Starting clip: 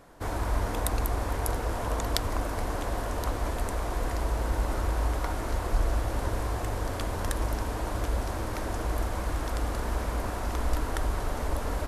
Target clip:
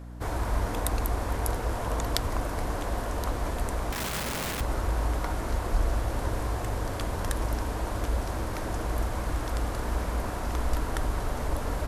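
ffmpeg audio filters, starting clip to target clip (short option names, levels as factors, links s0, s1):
-filter_complex "[0:a]asettb=1/sr,asplit=3[s0][s1][s2];[s0]atrim=end=3.924[s3];[s1]atrim=start=3.92:end=4.61,asetpts=PTS-STARTPTS,afade=t=in:d=0.004:c=qsin,afade=t=out:st=0.686:d=0.004:c=qsin,aeval=exprs='(mod(23.7*val(0)+1,2)-1)/23.7':c=same[s4];[s2]atrim=start=4.606[s5];[s3][s4]acrossfade=d=0.004:c1=hsin:c2=qsin[s6];[s6][s5]acrossfade=d=0.004:c1=qsin:c2=hsin,aeval=exprs='val(0)+0.01*(sin(2*PI*60*n/s)+sin(2*PI*2*60*n/s)/2+sin(2*PI*3*60*n/s)/3+sin(2*PI*4*60*n/s)/4+sin(2*PI*5*60*n/s)/5)':c=same"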